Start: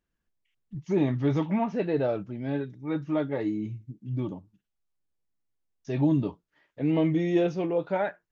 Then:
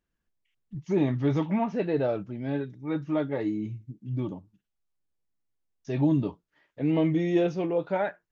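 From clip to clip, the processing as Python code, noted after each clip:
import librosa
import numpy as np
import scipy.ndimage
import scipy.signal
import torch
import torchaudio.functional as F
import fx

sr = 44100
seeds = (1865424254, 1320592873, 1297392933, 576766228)

y = x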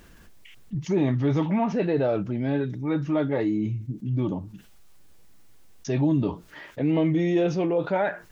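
y = fx.env_flatten(x, sr, amount_pct=50)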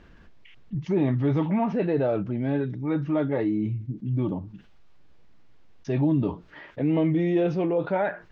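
y = fx.air_absorb(x, sr, metres=210.0)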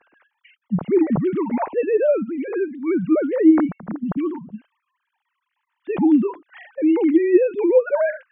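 y = fx.sine_speech(x, sr)
y = F.gain(torch.from_numpy(y), 6.0).numpy()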